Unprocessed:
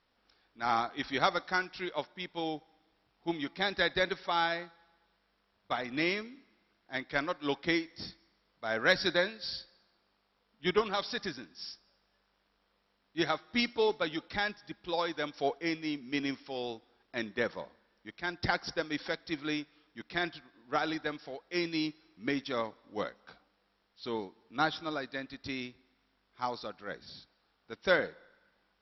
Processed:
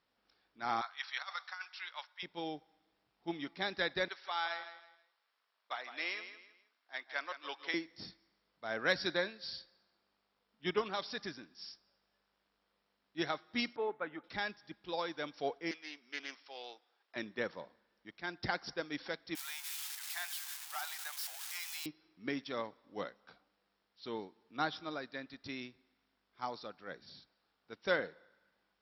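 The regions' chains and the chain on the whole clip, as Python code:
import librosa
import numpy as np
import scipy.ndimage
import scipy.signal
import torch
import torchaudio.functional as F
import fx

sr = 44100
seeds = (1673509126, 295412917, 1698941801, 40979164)

y = fx.chain(x, sr, fx.highpass(hz=990.0, slope=24),
    fx.over_compress(threshold_db=-34.0, ratio=-0.5), at=(0.81, 2.23))
y = fx.chain(y, sr, fx.highpass(hz=780.0, slope=12),
    fx.echo_feedback(ms=160, feedback_pct=32, wet_db=-11.0), at=(4.08, 7.74))
y = fx.chain(y, sr, fx.lowpass(hz=1800.0, slope=24),
    fx.tilt_eq(slope=2.5), at=(13.76, 14.24))
y = fx.chain(y, sr, fx.highpass(hz=710.0, slope=12),
    fx.doppler_dist(depth_ms=0.1), at=(15.71, 17.16))
y = fx.chain(y, sr, fx.crossing_spikes(level_db=-21.5),
    fx.tube_stage(drive_db=27.0, bias=0.3),
    fx.cheby1_highpass(hz=790.0, order=4), at=(19.35, 21.86))
y = scipy.signal.sosfilt(scipy.signal.butter(2, 44.0, 'highpass', fs=sr, output='sos'), y)
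y = fx.peak_eq(y, sr, hz=68.0, db=-8.5, octaves=0.61)
y = y * librosa.db_to_amplitude(-5.5)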